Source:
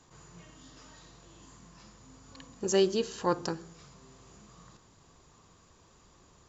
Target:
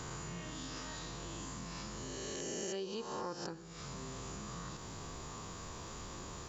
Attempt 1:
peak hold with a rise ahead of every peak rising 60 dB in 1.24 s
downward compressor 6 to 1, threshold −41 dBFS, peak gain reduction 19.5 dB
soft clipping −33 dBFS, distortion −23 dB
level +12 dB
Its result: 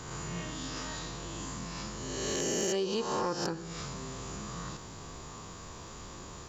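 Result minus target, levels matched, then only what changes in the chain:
downward compressor: peak gain reduction −10 dB
change: downward compressor 6 to 1, threshold −53 dBFS, peak gain reduction 29.5 dB

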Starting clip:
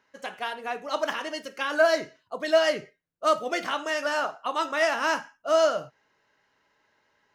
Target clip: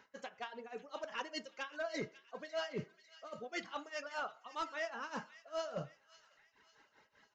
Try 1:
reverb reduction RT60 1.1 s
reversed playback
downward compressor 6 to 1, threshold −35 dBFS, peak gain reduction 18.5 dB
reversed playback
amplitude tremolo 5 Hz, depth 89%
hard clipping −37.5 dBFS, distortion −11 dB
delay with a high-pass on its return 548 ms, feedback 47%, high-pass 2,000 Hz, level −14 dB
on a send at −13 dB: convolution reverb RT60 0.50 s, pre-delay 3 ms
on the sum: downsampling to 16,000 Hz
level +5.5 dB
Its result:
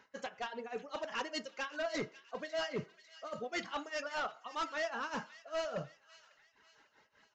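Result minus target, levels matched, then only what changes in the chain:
downward compressor: peak gain reduction −5.5 dB
change: downward compressor 6 to 1, threshold −41.5 dBFS, peak gain reduction 23.5 dB

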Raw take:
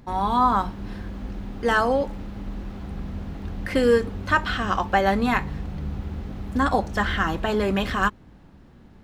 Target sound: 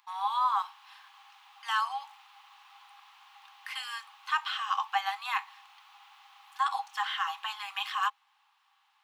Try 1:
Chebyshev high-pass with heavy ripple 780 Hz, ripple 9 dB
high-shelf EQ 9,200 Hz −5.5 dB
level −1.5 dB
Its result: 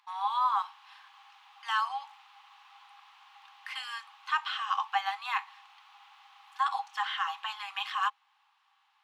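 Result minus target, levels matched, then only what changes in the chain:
8,000 Hz band −4.0 dB
change: high-shelf EQ 9,200 Hz +6.5 dB

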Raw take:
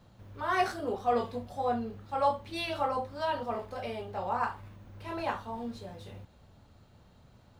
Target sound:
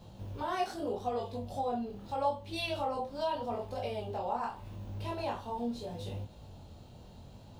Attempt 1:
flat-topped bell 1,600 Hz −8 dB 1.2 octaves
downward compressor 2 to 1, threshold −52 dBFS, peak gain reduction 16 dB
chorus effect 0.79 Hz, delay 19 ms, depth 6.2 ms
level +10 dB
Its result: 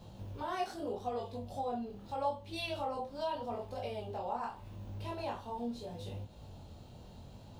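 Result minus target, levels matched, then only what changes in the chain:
downward compressor: peak gain reduction +3.5 dB
change: downward compressor 2 to 1, threshold −45.5 dBFS, peak gain reduction 13 dB

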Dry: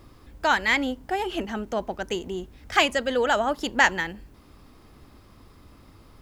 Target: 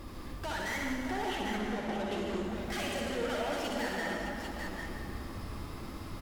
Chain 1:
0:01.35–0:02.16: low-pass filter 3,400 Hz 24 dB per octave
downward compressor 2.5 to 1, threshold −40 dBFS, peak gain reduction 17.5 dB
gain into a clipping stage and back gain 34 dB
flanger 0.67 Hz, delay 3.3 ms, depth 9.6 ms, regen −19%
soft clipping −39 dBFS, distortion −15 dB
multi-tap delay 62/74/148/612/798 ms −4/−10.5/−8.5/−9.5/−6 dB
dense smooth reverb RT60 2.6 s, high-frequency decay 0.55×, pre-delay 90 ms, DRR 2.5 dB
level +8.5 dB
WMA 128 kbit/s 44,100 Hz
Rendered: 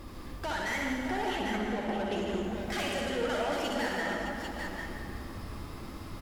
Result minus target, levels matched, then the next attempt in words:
gain into a clipping stage and back: distortion −5 dB
0:01.35–0:02.16: low-pass filter 3,400 Hz 24 dB per octave
downward compressor 2.5 to 1, threshold −40 dBFS, peak gain reduction 17.5 dB
gain into a clipping stage and back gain 40.5 dB
flanger 0.67 Hz, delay 3.3 ms, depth 9.6 ms, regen −19%
soft clipping −39 dBFS, distortion −24 dB
multi-tap delay 62/74/148/612/798 ms −4/−10.5/−8.5/−9.5/−6 dB
dense smooth reverb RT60 2.6 s, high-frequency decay 0.55×, pre-delay 90 ms, DRR 2.5 dB
level +8.5 dB
WMA 128 kbit/s 44,100 Hz

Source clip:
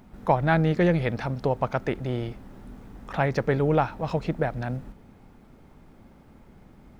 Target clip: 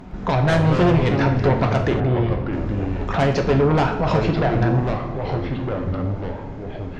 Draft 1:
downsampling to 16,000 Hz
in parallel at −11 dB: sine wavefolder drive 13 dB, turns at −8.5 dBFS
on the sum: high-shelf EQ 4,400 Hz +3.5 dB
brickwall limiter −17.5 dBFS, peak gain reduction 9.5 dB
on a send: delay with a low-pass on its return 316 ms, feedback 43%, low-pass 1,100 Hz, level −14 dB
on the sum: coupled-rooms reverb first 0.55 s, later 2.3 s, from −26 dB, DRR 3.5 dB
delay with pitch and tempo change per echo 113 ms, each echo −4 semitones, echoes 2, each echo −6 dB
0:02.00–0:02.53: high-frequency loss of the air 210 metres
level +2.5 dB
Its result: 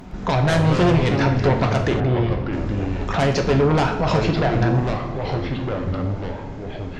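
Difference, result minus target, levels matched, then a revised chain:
8,000 Hz band +6.0 dB
downsampling to 16,000 Hz
in parallel at −11 dB: sine wavefolder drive 13 dB, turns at −8.5 dBFS
on the sum: high-shelf EQ 4,400 Hz −6.5 dB
brickwall limiter −17.5 dBFS, peak gain reduction 9 dB
on a send: delay with a low-pass on its return 316 ms, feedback 43%, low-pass 1,100 Hz, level −14 dB
on the sum: coupled-rooms reverb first 0.55 s, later 2.3 s, from −26 dB, DRR 3.5 dB
delay with pitch and tempo change per echo 113 ms, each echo −4 semitones, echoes 2, each echo −6 dB
0:02.00–0:02.53: high-frequency loss of the air 210 metres
level +2.5 dB

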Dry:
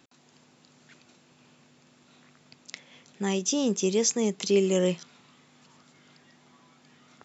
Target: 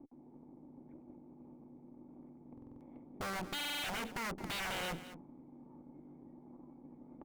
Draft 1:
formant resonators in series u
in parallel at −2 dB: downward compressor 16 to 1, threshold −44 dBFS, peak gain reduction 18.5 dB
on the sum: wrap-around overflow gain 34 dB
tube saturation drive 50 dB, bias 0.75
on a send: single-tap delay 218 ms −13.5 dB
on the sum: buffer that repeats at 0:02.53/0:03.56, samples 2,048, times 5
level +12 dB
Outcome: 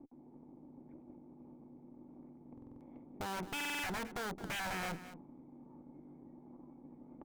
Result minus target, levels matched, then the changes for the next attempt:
downward compressor: peak gain reduction +11 dB
change: downward compressor 16 to 1, threshold −32.5 dBFS, peak gain reduction 7.5 dB

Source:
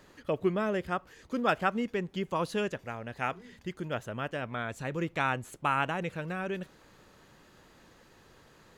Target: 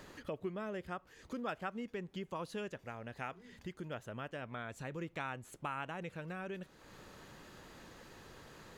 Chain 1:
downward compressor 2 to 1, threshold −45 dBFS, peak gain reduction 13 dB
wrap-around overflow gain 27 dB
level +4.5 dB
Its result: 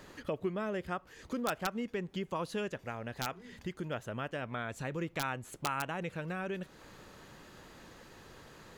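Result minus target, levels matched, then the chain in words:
downward compressor: peak gain reduction −5.5 dB
downward compressor 2 to 1, threshold −56 dBFS, peak gain reduction 18.5 dB
wrap-around overflow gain 27 dB
level +4.5 dB

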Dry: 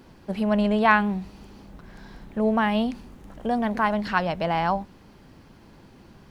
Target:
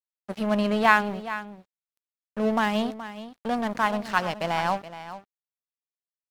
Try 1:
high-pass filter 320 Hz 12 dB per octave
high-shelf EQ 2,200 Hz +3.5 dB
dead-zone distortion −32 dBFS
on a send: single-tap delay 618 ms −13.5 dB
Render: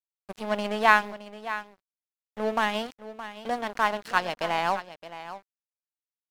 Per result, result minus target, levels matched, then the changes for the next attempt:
echo 195 ms late; 250 Hz band −7.5 dB
change: single-tap delay 423 ms −13.5 dB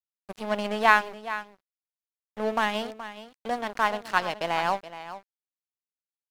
250 Hz band −7.5 dB
change: high-pass filter 100 Hz 12 dB per octave

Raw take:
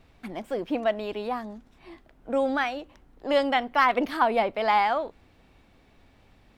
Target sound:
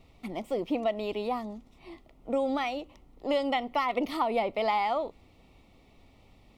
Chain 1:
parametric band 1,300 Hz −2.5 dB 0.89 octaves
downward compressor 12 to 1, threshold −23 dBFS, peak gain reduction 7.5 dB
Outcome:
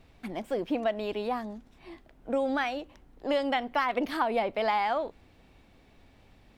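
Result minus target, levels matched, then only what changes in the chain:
2,000 Hz band +3.0 dB
add after downward compressor: Butterworth band-reject 1,600 Hz, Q 3.2

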